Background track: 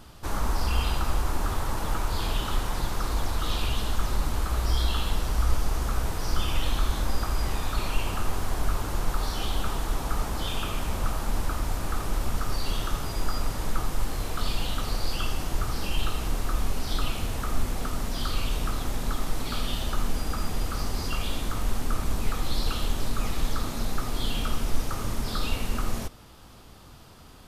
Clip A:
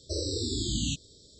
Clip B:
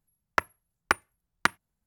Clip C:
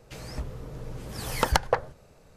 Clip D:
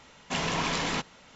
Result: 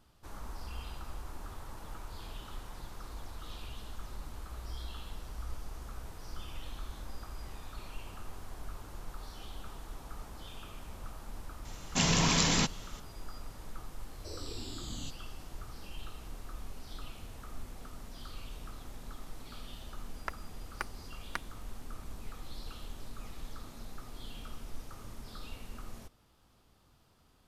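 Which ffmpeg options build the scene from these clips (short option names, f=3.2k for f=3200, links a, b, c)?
-filter_complex "[0:a]volume=-17dB[a];[4:a]bass=f=250:g=10,treble=f=4k:g=12,atrim=end=1.35,asetpts=PTS-STARTPTS,volume=-2.5dB,afade=t=in:d=0.004:c=hsin,afade=t=out:st=1.346:d=0.004:c=hsin,adelay=11650[b];[1:a]atrim=end=1.39,asetpts=PTS-STARTPTS,volume=-13dB,afade=t=in:d=0.004:c=hsin,afade=t=out:st=1.386:d=0.004:c=hsin,adelay=14150[c];[2:a]atrim=end=1.86,asetpts=PTS-STARTPTS,volume=-14.5dB,afade=t=in:d=0.004:c=hsin,afade=t=out:st=1.856:d=0.004:c=hsin,adelay=19900[d];[a][b][c][d]amix=inputs=4:normalize=0"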